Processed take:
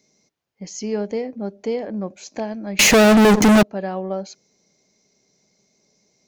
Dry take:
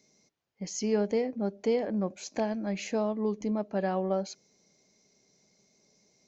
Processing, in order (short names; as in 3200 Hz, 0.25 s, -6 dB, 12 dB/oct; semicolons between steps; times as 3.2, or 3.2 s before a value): 2.79–3.63 fuzz box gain 45 dB, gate -53 dBFS; gain +3 dB